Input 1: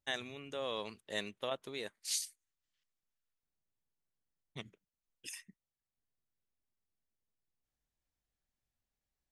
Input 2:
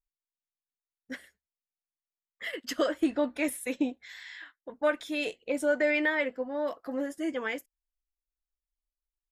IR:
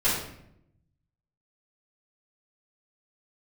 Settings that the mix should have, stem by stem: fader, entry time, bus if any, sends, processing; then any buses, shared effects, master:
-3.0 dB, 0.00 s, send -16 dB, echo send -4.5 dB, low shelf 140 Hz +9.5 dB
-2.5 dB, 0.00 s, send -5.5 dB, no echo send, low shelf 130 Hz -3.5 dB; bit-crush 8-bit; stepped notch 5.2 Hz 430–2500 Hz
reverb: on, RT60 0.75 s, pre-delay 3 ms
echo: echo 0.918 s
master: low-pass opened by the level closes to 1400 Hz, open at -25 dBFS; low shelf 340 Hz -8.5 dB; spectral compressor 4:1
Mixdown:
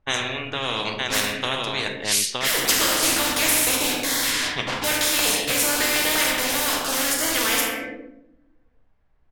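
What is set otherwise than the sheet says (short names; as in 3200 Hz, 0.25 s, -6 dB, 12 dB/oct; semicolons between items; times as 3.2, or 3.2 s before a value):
stem 1 -3.0 dB -> +4.0 dB; stem 2 -2.5 dB -> +4.5 dB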